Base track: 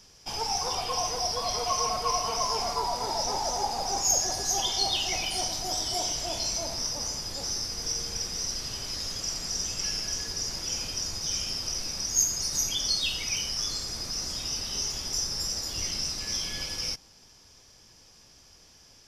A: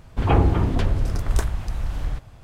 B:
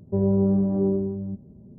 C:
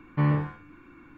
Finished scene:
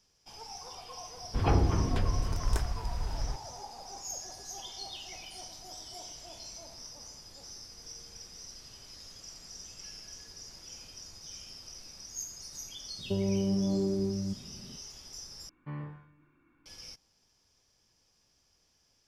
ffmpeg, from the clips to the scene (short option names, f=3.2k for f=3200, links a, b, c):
-filter_complex "[0:a]volume=-15.5dB[a];[2:a]acompressor=threshold=-23dB:ratio=6:attack=3.2:release=140:knee=1:detection=peak[b];[3:a]aecho=1:1:135|270|405|540:0.1|0.048|0.023|0.0111[c];[a]asplit=2[d][e];[d]atrim=end=15.494[f];[c]atrim=end=1.17,asetpts=PTS-STARTPTS,volume=-17dB[g];[e]atrim=start=16.656[h];[1:a]atrim=end=2.43,asetpts=PTS-STARTPTS,volume=-8dB,afade=t=in:d=0.004:c=hsin,afade=t=out:st=2.426:d=0.004:c=hsin,adelay=1170[i];[b]atrim=end=1.78,asetpts=PTS-STARTPTS,volume=-2.5dB,afade=t=in:d=0.004:c=hsin,afade=t=out:st=1.776:d=0.004:c=hsin,adelay=12980[j];[f][g]acrossfade=d=0.004:c1=hsin:c2=hsin[k];[k][h]acrossfade=d=0.004:c1=hsin:c2=hsin[l];[l][i][j]amix=inputs=3:normalize=0"